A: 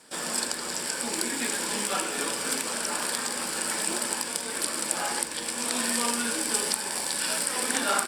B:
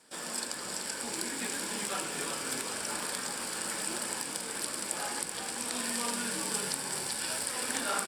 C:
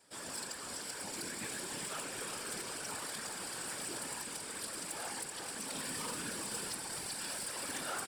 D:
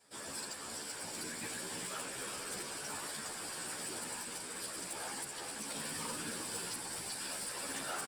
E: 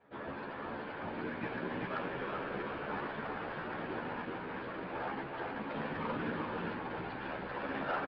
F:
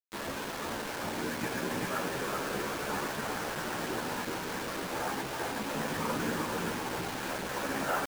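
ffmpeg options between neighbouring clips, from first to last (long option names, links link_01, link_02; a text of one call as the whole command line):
ffmpeg -i in.wav -filter_complex "[0:a]asplit=6[link_01][link_02][link_03][link_04][link_05][link_06];[link_02]adelay=382,afreqshift=-45,volume=-6dB[link_07];[link_03]adelay=764,afreqshift=-90,volume=-14dB[link_08];[link_04]adelay=1146,afreqshift=-135,volume=-21.9dB[link_09];[link_05]adelay=1528,afreqshift=-180,volume=-29.9dB[link_10];[link_06]adelay=1910,afreqshift=-225,volume=-37.8dB[link_11];[link_01][link_07][link_08][link_09][link_10][link_11]amix=inputs=6:normalize=0,volume=-7dB" out.wav
ffmpeg -i in.wav -af "afftfilt=real='hypot(re,im)*cos(2*PI*random(0))':imag='hypot(re,im)*sin(2*PI*random(1))':win_size=512:overlap=0.75,asoftclip=type=tanh:threshold=-33.5dB,volume=1dB" out.wav
ffmpeg -i in.wav -filter_complex "[0:a]asplit=2[link_01][link_02];[link_02]adelay=11.9,afreqshift=0.39[link_03];[link_01][link_03]amix=inputs=2:normalize=1,volume=2.5dB" out.wav
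ffmpeg -i in.wav -af "aecho=1:1:390:0.562,aresample=11025,adynamicsmooth=sensitivity=7:basefreq=1800,aresample=44100,volume=7.5dB" out.wav
ffmpeg -i in.wav -af "acrusher=bits=6:mix=0:aa=0.000001,volume=4dB" out.wav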